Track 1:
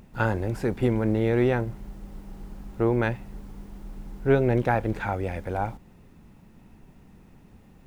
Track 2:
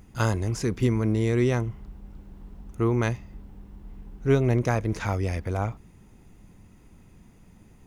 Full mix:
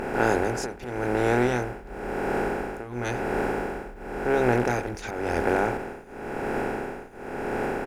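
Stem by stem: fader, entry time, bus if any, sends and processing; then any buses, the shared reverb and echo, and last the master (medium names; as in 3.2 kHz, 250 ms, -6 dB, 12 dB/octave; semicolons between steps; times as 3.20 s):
-3.0 dB, 0.00 s, no send, spectral levelling over time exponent 0.2; band-stop 3.6 kHz, Q 5.6; tremolo triangle 0.95 Hz, depth 95%
+1.0 dB, 24 ms, no send, slow attack 185 ms; peaking EQ 560 Hz -13 dB 2.5 oct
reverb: none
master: peaking EQ 110 Hz -9.5 dB 1.6 oct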